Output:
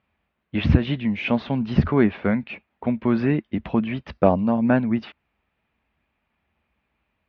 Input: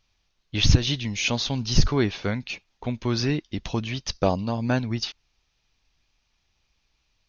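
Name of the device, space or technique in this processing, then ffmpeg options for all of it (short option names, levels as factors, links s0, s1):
bass cabinet: -af "highpass=f=62:w=0.5412,highpass=f=62:w=1.3066,equalizer=f=110:t=q:w=4:g=-9,equalizer=f=220:t=q:w=4:g=7,equalizer=f=610:t=q:w=4:g=3,lowpass=f=2300:w=0.5412,lowpass=f=2300:w=1.3066,volume=1.5"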